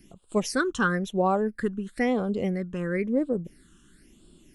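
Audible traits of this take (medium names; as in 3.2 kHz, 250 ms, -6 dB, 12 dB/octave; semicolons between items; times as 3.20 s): phasing stages 8, 0.99 Hz, lowest notch 620–1900 Hz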